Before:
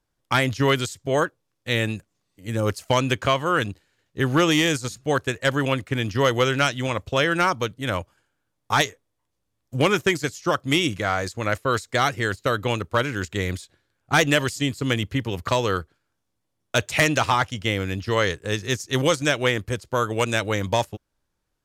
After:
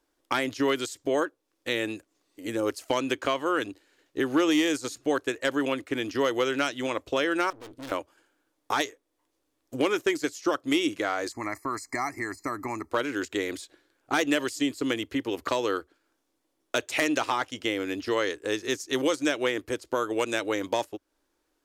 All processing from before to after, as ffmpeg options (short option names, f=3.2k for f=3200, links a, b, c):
-filter_complex "[0:a]asettb=1/sr,asplit=3[a][b][c];[a]atrim=end=7.504[d];[b]atrim=start=7.5:end=7.92,asetpts=PTS-STARTPTS,afade=t=in:d=0.004:c=qsin,afade=t=out:st=0.416:d=0.004:c=qsin,lowshelf=f=220:g=9.5,aeval=exprs='(tanh(89.1*val(0)+0.45)-tanh(0.45))/89.1':c=same[e];[c]atrim=start=7.916[f];[d][e]acrossfade=d=0.004:c1=hsin:c2=qsin[g];[g][f]acrossfade=d=0.004:c1=qsin:c2=hsin,asettb=1/sr,asplit=3[h][i][j];[h]atrim=end=11.324[k];[i]atrim=start=11.32:end=12.91,asetpts=PTS-STARTPTS,afade=t=in:d=0.004:c=qsin,afade=t=out:st=1.586:d=0.004:c=qsin,asuperstop=centerf=3300:order=20:qfactor=2.1,acompressor=threshold=-36dB:ratio=1.5:attack=3.2:release=140:knee=1:detection=peak,aecho=1:1:1:0.88,atrim=end_sample=70119[l];[j]atrim=start=12.906[m];[k][l]acrossfade=d=0.004:c1=hsin:c2=qsin[n];[n][m]acrossfade=d=0.004:c1=qsin:c2=hsin,equalizer=f=89:t=o:w=0.36:g=-13,acompressor=threshold=-37dB:ratio=2,lowshelf=f=230:t=q:w=3:g=-8.5,volume=4dB"